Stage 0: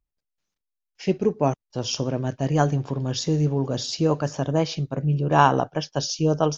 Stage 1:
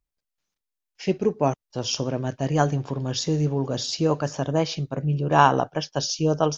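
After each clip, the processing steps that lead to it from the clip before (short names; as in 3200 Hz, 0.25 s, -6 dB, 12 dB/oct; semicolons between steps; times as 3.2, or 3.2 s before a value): low shelf 420 Hz -3 dB; gain +1 dB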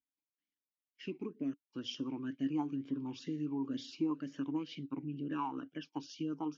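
compressor 4:1, threshold -24 dBFS, peak gain reduction 12 dB; vowel sweep i-u 2.1 Hz; gain +1.5 dB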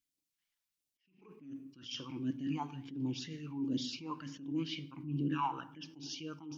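phaser stages 2, 1.4 Hz, lowest notch 240–1300 Hz; shoebox room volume 2500 m³, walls furnished, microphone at 0.74 m; attack slew limiter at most 100 dB/s; gain +7 dB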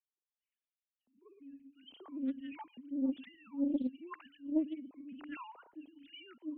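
sine-wave speech; phaser stages 2, 1.1 Hz, lowest notch 320–2600 Hz; Doppler distortion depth 0.25 ms; gain +3 dB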